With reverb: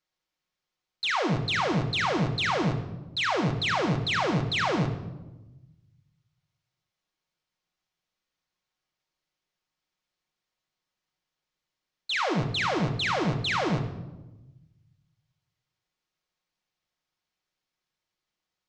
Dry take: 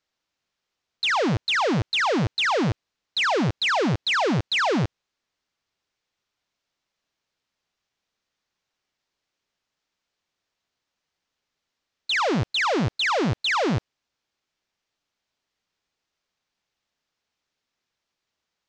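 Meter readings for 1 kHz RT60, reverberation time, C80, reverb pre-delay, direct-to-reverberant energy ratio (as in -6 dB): 0.95 s, 1.1 s, 10.5 dB, 5 ms, 3.0 dB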